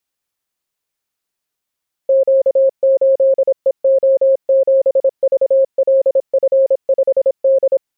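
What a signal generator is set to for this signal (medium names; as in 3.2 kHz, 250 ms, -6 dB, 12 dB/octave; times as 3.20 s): Morse "Q8EO7VLF5D" 26 wpm 537 Hz -8 dBFS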